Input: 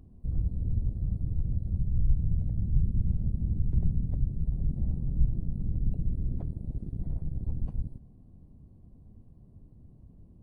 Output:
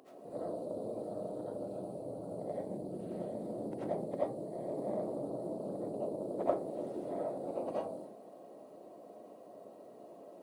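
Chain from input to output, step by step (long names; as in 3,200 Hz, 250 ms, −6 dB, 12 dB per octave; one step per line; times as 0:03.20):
four-pole ladder high-pass 420 Hz, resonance 40%
convolution reverb RT60 0.35 s, pre-delay 45 ms, DRR −9 dB
highs frequency-modulated by the lows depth 0.15 ms
level +17 dB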